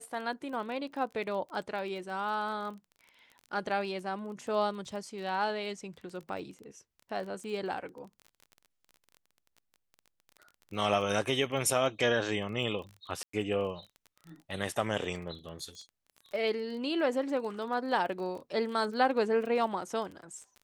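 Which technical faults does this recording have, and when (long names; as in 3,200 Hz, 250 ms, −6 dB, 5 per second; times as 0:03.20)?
surface crackle 24 per second −40 dBFS
0:13.23–0:13.33: drop-out 104 ms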